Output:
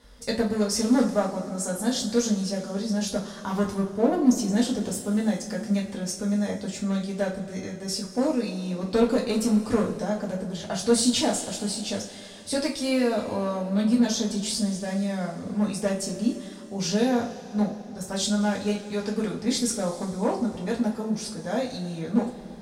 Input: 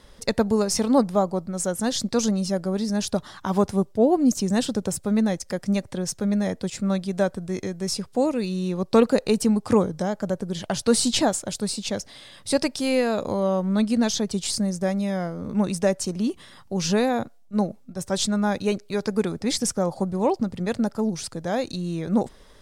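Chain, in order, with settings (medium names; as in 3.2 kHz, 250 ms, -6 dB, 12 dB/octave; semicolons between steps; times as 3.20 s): one-sided clip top -15.5 dBFS; two-slope reverb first 0.28 s, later 3.2 s, from -20 dB, DRR -4 dB; trim -7.5 dB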